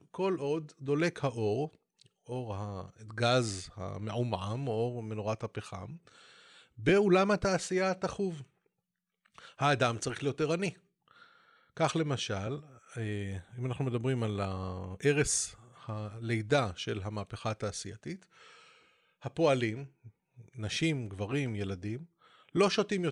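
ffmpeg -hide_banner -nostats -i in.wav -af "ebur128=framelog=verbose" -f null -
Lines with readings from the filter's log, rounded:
Integrated loudness:
  I:         -32.6 LUFS
  Threshold: -43.7 LUFS
Loudness range:
  LRA:         5.0 LU
  Threshold: -53.9 LUFS
  LRA low:   -36.2 LUFS
  LRA high:  -31.3 LUFS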